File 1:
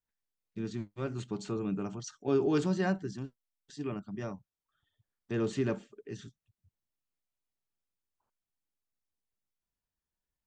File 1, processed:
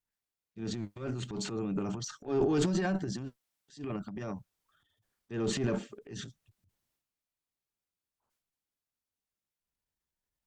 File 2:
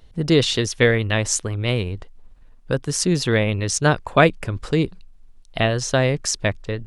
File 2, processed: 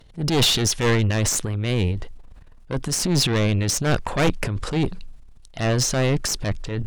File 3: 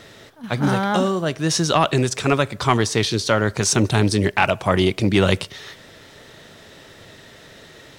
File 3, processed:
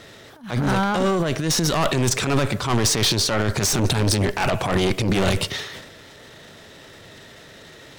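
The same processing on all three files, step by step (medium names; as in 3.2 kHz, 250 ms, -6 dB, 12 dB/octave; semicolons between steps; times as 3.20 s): Chebyshev shaper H 4 -9 dB, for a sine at -1 dBFS; transient shaper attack -8 dB, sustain +10 dB; saturation -13.5 dBFS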